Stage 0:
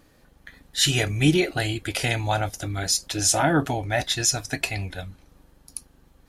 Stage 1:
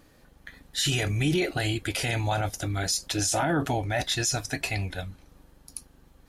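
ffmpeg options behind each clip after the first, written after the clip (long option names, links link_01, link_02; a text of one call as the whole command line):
ffmpeg -i in.wav -af "alimiter=limit=-17dB:level=0:latency=1:release=12" out.wav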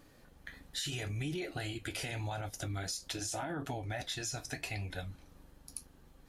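ffmpeg -i in.wav -af "acompressor=threshold=-33dB:ratio=5,flanger=delay=7:depth=7.4:regen=-64:speed=0.8:shape=sinusoidal,volume=1dB" out.wav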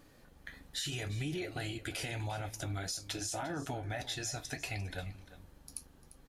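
ffmpeg -i in.wav -af "aecho=1:1:348:0.168" out.wav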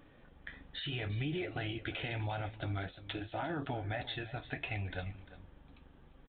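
ffmpeg -i in.wav -af "aresample=8000,aresample=44100,volume=1dB" out.wav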